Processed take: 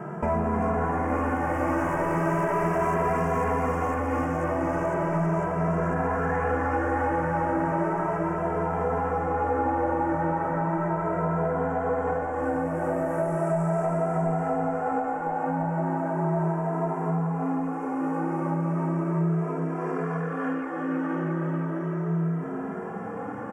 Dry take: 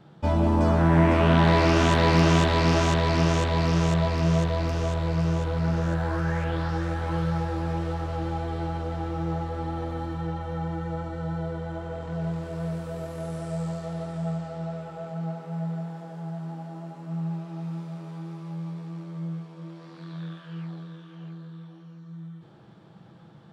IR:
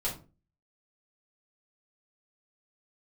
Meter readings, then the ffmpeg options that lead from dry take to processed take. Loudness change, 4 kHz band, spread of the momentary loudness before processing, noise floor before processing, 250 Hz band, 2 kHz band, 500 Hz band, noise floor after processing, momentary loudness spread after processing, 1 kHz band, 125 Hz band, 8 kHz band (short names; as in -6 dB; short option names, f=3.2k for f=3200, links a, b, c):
-1.0 dB, under -20 dB, 19 LU, -49 dBFS, 0.0 dB, 0.0 dB, +3.0 dB, -32 dBFS, 4 LU, +4.5 dB, -3.5 dB, n/a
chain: -filter_complex "[0:a]acontrast=80,asplit=2[a][b];[b]highpass=f=720:p=1,volume=24dB,asoftclip=type=tanh:threshold=-3.5dB[c];[a][c]amix=inputs=2:normalize=0,lowpass=f=1k:p=1,volume=-6dB,asuperstop=centerf=3900:order=4:qfactor=0.7,highshelf=f=3.6k:g=7,asplit=2[d][e];[e]asplit=5[f][g][h][i][j];[f]adelay=317,afreqshift=100,volume=-5.5dB[k];[g]adelay=634,afreqshift=200,volume=-12.4dB[l];[h]adelay=951,afreqshift=300,volume=-19.4dB[m];[i]adelay=1268,afreqshift=400,volume=-26.3dB[n];[j]adelay=1585,afreqshift=500,volume=-33.2dB[o];[k][l][m][n][o]amix=inputs=5:normalize=0[p];[d][p]amix=inputs=2:normalize=0,acompressor=threshold=-24dB:ratio=6,asplit=2[q][r];[r]adelay=2.6,afreqshift=0.36[s];[q][s]amix=inputs=2:normalize=1,volume=3dB"